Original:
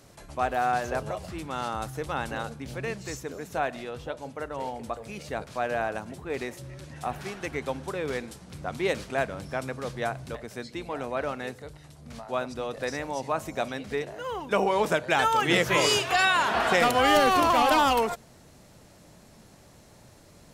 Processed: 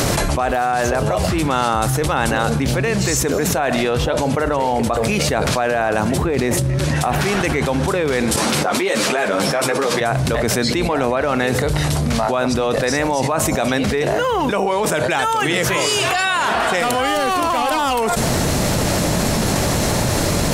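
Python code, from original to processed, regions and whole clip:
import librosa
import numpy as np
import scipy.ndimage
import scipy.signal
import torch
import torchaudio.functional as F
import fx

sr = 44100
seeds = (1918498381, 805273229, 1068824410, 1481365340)

y = fx.chain(x, sr, fx.low_shelf(hz=460.0, db=8.0),
    fx.over_compress(threshold_db=-38.0, ratio=-1.0), at=(6.26, 6.79))
y = fx.chain(y, sr, fx.highpass(hz=300.0, slope=12),
    fx.ensemble(), at=(8.36, 10.01))
y = fx.dynamic_eq(y, sr, hz=8900.0, q=1.6, threshold_db=-51.0, ratio=4.0, max_db=6)
y = fx.env_flatten(y, sr, amount_pct=100)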